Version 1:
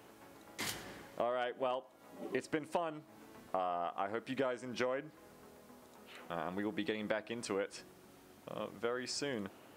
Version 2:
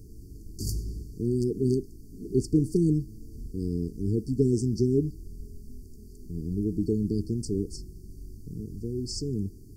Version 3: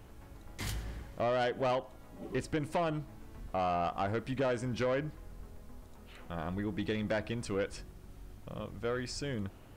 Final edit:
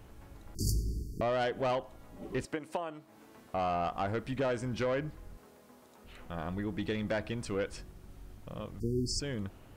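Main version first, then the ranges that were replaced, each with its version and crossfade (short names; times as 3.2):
3
0.55–1.21 from 2
2.45–3.54 from 1
5.37–6.04 from 1
8.8–9.2 from 2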